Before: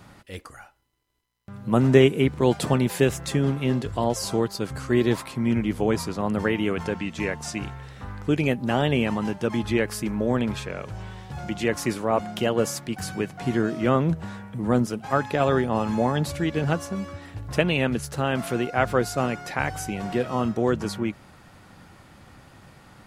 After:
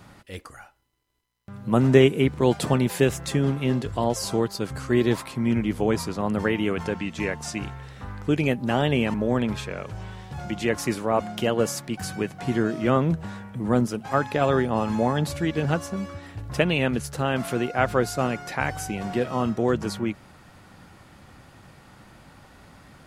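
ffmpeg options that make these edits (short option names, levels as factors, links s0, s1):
-filter_complex "[0:a]asplit=2[s0][s1];[s0]atrim=end=9.142[s2];[s1]atrim=start=10.128[s3];[s2][s3]acrossfade=d=0.004:c1=hsin:c2=hsin"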